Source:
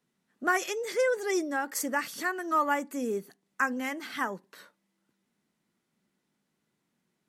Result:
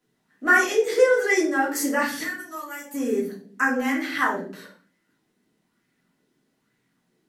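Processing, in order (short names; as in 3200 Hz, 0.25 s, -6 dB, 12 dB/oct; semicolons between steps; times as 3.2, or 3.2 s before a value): 2.23–2.94 pre-emphasis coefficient 0.9; de-hum 60.78 Hz, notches 16; reverb, pre-delay 3 ms, DRR -4.5 dB; LFO bell 1.1 Hz 340–2100 Hz +7 dB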